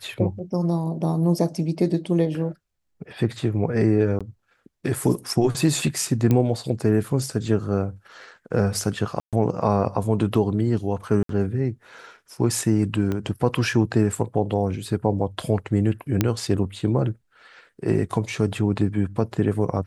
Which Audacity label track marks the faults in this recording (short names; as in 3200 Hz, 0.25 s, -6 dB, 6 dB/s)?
4.190000	4.210000	gap 16 ms
6.310000	6.310000	pop -9 dBFS
9.200000	9.330000	gap 0.127 s
11.230000	11.290000	gap 63 ms
13.120000	13.120000	pop -15 dBFS
16.210000	16.210000	pop -5 dBFS